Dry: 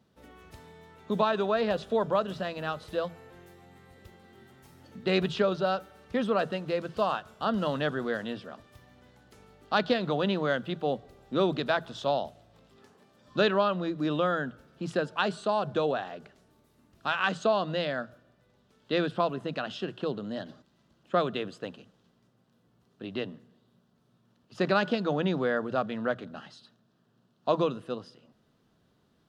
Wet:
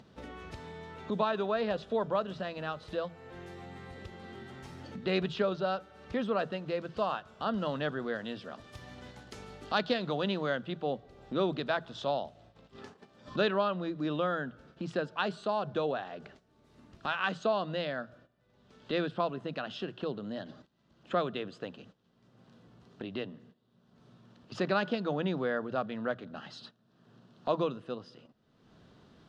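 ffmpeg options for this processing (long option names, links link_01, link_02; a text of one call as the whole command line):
ffmpeg -i in.wav -filter_complex "[0:a]asettb=1/sr,asplit=3[link_01][link_02][link_03];[link_01]atrim=end=8.244[link_04];[link_02]atrim=start=8.24:end=10.5,asetpts=PTS-STARTPTS,afade=type=in:duration=0.004:curve=qsin,afade=type=out:start_time=2.256:duration=0.004:curve=qsin,aemphasis=mode=production:type=cd[link_05];[link_03]atrim=start=10.496[link_06];[link_04][link_05]acrossfade=duration=0.004:curve1=hsin:curve2=qsin[link_07];[link_07][link_06]acrossfade=duration=0.004:curve1=qsin:curve2=hsin,agate=range=-17dB:threshold=-57dB:ratio=16:detection=peak,lowpass=5800,acompressor=mode=upward:threshold=-30dB:ratio=2.5,volume=-4dB" out.wav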